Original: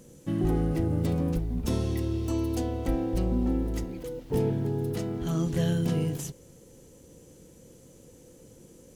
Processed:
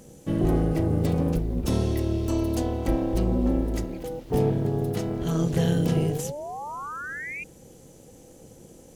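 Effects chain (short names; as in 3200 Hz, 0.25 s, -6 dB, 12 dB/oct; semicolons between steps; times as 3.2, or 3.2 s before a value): painted sound rise, 5.62–7.44, 220–2500 Hz -38 dBFS; AM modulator 300 Hz, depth 45%; gain +6 dB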